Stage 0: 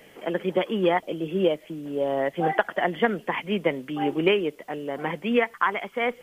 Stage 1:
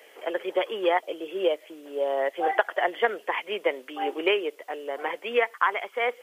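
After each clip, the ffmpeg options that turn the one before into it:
ffmpeg -i in.wav -af "highpass=frequency=400:width=0.5412,highpass=frequency=400:width=1.3066" out.wav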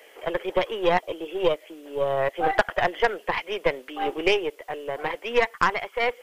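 ffmpeg -i in.wav -af "aeval=exprs='0.447*(cos(1*acos(clip(val(0)/0.447,-1,1)))-cos(1*PI/2))+0.0447*(cos(6*acos(clip(val(0)/0.447,-1,1)))-cos(6*PI/2))':channel_layout=same,volume=1.5dB" out.wav

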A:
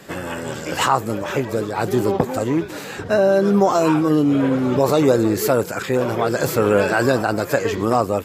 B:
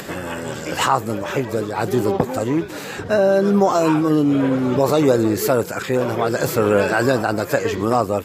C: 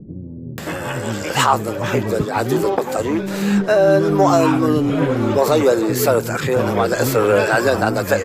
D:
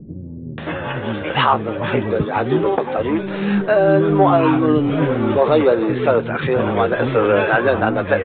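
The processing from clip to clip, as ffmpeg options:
ffmpeg -i in.wav -af "acompressor=mode=upward:threshold=-25dB:ratio=2.5" out.wav
ffmpeg -i in.wav -filter_complex "[0:a]asplit=2[link_01][link_02];[link_02]volume=11.5dB,asoftclip=hard,volume=-11.5dB,volume=-4dB[link_03];[link_01][link_03]amix=inputs=2:normalize=0,acrossover=split=280[link_04][link_05];[link_05]adelay=580[link_06];[link_04][link_06]amix=inputs=2:normalize=0,volume=-1dB" out.wav
ffmpeg -i in.wav -filter_complex "[0:a]asplit=2[link_01][link_02];[link_02]adelay=13,volume=-11.5dB[link_03];[link_01][link_03]amix=inputs=2:normalize=0,aresample=8000,aresample=44100" out.wav

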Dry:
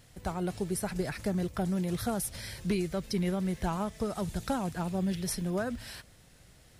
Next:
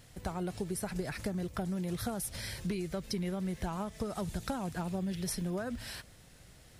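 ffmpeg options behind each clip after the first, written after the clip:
ffmpeg -i in.wav -af "acompressor=threshold=-33dB:ratio=6,volume=1dB" out.wav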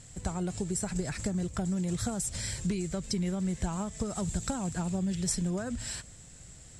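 ffmpeg -i in.wav -af "lowpass=frequency=7600:width_type=q:width=11,bass=frequency=250:gain=6,treble=frequency=4000:gain=-1" out.wav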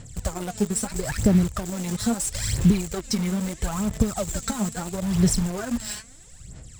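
ffmpeg -i in.wav -filter_complex "[0:a]aphaser=in_gain=1:out_gain=1:delay=4.8:decay=0.73:speed=0.76:type=sinusoidal,asplit=2[link_01][link_02];[link_02]acrusher=bits=4:mix=0:aa=0.000001,volume=-6.5dB[link_03];[link_01][link_03]amix=inputs=2:normalize=0" out.wav

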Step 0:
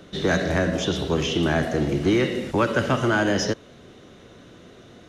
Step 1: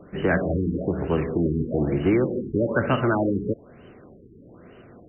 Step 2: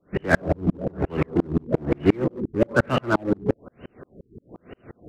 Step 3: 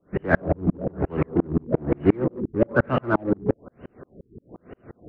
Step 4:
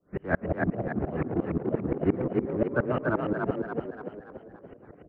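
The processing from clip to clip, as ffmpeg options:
ffmpeg -i in.wav -af "aexciter=amount=1.5:drive=8.4:freq=3300,afftfilt=real='re*lt(b*sr/1024,430*pow(3100/430,0.5+0.5*sin(2*PI*1.1*pts/sr)))':imag='im*lt(b*sr/1024,430*pow(3100/430,0.5+0.5*sin(2*PI*1.1*pts/sr)))':win_size=1024:overlap=0.75" out.wav
ffmpeg -i in.wav -filter_complex "[0:a]asplit=2[link_01][link_02];[link_02]aeval=exprs='0.0473*(abs(mod(val(0)/0.0473+3,4)-2)-1)':channel_layout=same,volume=-8dB[link_03];[link_01][link_03]amix=inputs=2:normalize=0,aeval=exprs='val(0)*pow(10,-38*if(lt(mod(-5.7*n/s,1),2*abs(-5.7)/1000),1-mod(-5.7*n/s,1)/(2*abs(-5.7)/1000),(mod(-5.7*n/s,1)-2*abs(-5.7)/1000)/(1-2*abs(-5.7)/1000))/20)':channel_layout=same,volume=8.5dB" out.wav
ffmpeg -i in.wav -af "lowpass=1800" out.wav
ffmpeg -i in.wav -filter_complex "[0:a]asplit=2[link_01][link_02];[link_02]asplit=6[link_03][link_04][link_05][link_06][link_07][link_08];[link_03]adelay=287,afreqshift=34,volume=-3dB[link_09];[link_04]adelay=574,afreqshift=68,volume=-9.2dB[link_10];[link_05]adelay=861,afreqshift=102,volume=-15.4dB[link_11];[link_06]adelay=1148,afreqshift=136,volume=-21.6dB[link_12];[link_07]adelay=1435,afreqshift=170,volume=-27.8dB[link_13];[link_08]adelay=1722,afreqshift=204,volume=-34dB[link_14];[link_09][link_10][link_11][link_12][link_13][link_14]amix=inputs=6:normalize=0[link_15];[link_01][link_15]amix=inputs=2:normalize=0,acrossover=split=3000[link_16][link_17];[link_17]acompressor=threshold=-57dB:ratio=4:attack=1:release=60[link_18];[link_16][link_18]amix=inputs=2:normalize=0,volume=-7dB" out.wav

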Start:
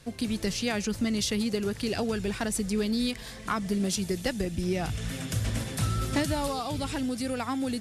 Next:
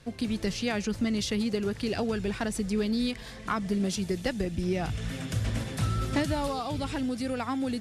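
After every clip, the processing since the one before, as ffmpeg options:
ffmpeg -i in.wav -af "highshelf=frequency=6700:gain=-10" out.wav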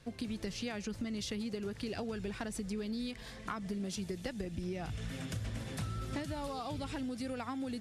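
ffmpeg -i in.wav -af "acompressor=threshold=-30dB:ratio=6,volume=-5dB" out.wav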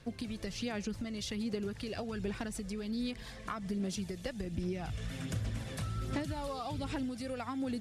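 ffmpeg -i in.wav -af "aphaser=in_gain=1:out_gain=1:delay=1.8:decay=0.31:speed=1.3:type=sinusoidal" out.wav

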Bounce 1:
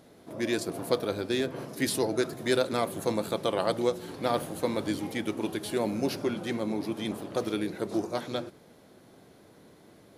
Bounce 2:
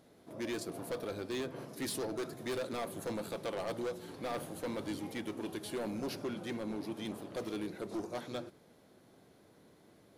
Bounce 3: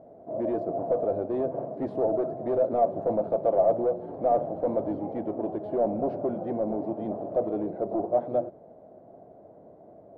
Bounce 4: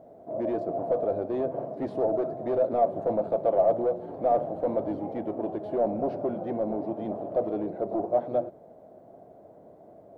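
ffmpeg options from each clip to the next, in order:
ffmpeg -i in.wav -af "asoftclip=type=hard:threshold=-26dB,volume=-7dB" out.wav
ffmpeg -i in.wav -af "lowpass=frequency=660:width_type=q:width=5.8,volume=6dB" out.wav
ffmpeg -i in.wav -af "highshelf=frequency=2100:gain=9.5,volume=-1dB" out.wav

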